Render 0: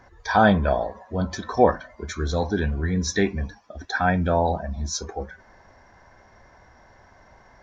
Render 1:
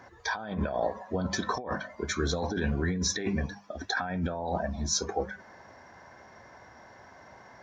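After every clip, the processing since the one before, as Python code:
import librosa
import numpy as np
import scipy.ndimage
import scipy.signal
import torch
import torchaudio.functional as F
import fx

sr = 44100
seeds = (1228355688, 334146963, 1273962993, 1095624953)

y = scipy.signal.sosfilt(scipy.signal.butter(2, 110.0, 'highpass', fs=sr, output='sos'), x)
y = fx.hum_notches(y, sr, base_hz=50, count=4)
y = fx.over_compress(y, sr, threshold_db=-28.0, ratio=-1.0)
y = y * 10.0 ** (-2.5 / 20.0)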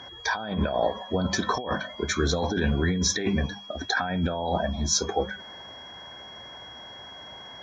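y = x + 10.0 ** (-47.0 / 20.0) * np.sin(2.0 * np.pi * 3300.0 * np.arange(len(x)) / sr)
y = y * 10.0 ** (4.5 / 20.0)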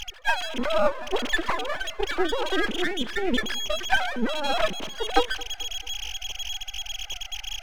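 y = fx.sine_speech(x, sr)
y = np.maximum(y, 0.0)
y = fx.echo_feedback(y, sr, ms=220, feedback_pct=54, wet_db=-21.5)
y = y * 10.0 ** (5.0 / 20.0)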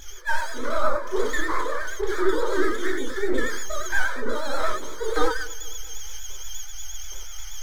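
y = fx.fixed_phaser(x, sr, hz=740.0, stages=6)
y = fx.rev_gated(y, sr, seeds[0], gate_ms=130, shape='flat', drr_db=-5.5)
y = fx.vibrato(y, sr, rate_hz=8.4, depth_cents=67.0)
y = y * 10.0 ** (-3.0 / 20.0)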